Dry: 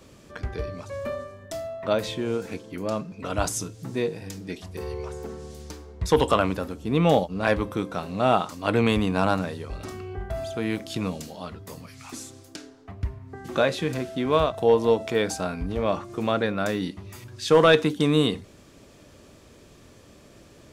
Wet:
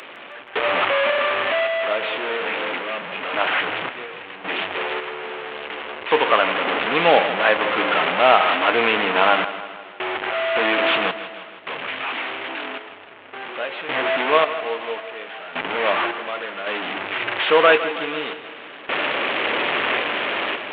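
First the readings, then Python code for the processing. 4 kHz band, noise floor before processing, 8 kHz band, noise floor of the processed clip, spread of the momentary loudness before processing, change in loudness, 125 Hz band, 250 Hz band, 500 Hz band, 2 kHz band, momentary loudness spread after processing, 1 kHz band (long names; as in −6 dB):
+9.0 dB, −52 dBFS, below −35 dB, −39 dBFS, 18 LU, +5.0 dB, −14.0 dB, −4.5 dB, +3.0 dB, +13.0 dB, 15 LU, +8.5 dB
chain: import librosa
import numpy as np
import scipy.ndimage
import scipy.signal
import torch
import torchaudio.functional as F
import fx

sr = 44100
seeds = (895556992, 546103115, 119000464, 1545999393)

p1 = fx.delta_mod(x, sr, bps=16000, step_db=-19.0)
p2 = scipy.signal.sosfilt(scipy.signal.butter(2, 490.0, 'highpass', fs=sr, output='sos'), p1)
p3 = fx.high_shelf(p2, sr, hz=2200.0, db=7.5)
p4 = fx.tremolo_random(p3, sr, seeds[0], hz=1.8, depth_pct=95)
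p5 = p4 + fx.echo_feedback(p4, sr, ms=159, feedback_pct=56, wet_db=-13.0, dry=0)
y = F.gain(torch.from_numpy(p5), 7.0).numpy()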